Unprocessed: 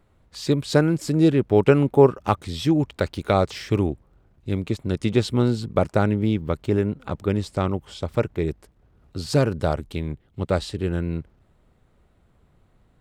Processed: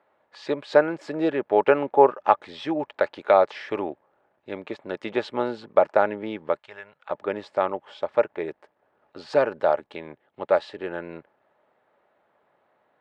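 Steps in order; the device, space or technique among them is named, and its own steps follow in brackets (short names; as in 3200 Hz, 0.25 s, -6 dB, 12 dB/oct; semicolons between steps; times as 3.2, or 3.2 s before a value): tin-can telephone (BPF 540–2300 Hz; small resonant body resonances 600/850/1700 Hz, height 7 dB, ringing for 30 ms); 6.59–7.1 passive tone stack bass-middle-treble 10-0-10; gain +2 dB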